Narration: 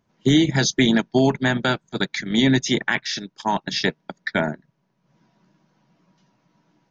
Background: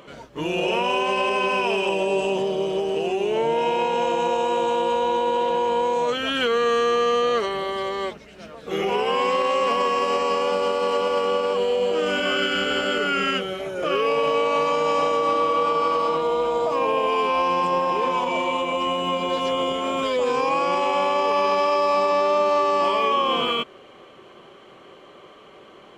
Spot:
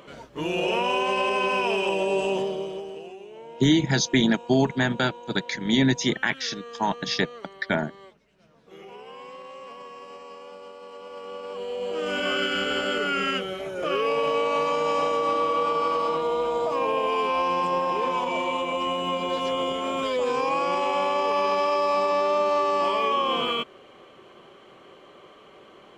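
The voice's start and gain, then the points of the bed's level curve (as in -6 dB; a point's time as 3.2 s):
3.35 s, -3.0 dB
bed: 2.38 s -2 dB
3.3 s -20.5 dB
10.92 s -20.5 dB
12.24 s -3 dB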